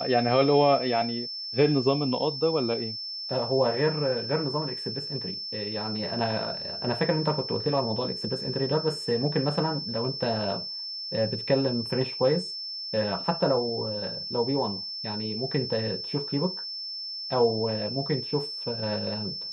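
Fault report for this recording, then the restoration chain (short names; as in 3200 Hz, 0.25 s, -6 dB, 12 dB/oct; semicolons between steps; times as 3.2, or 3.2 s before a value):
tone 5300 Hz -33 dBFS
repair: notch 5300 Hz, Q 30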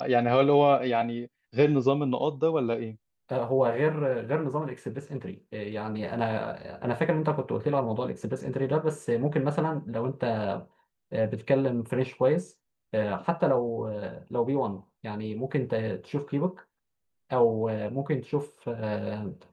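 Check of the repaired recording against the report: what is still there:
none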